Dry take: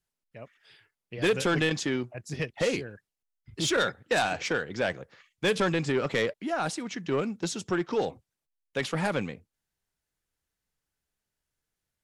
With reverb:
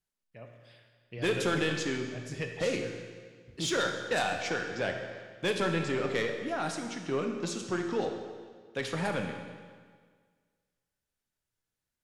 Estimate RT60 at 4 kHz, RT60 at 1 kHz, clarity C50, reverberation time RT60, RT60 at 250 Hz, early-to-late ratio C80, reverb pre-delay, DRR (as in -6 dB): 1.6 s, 1.7 s, 5.0 dB, 1.7 s, 1.7 s, 6.5 dB, 17 ms, 4.0 dB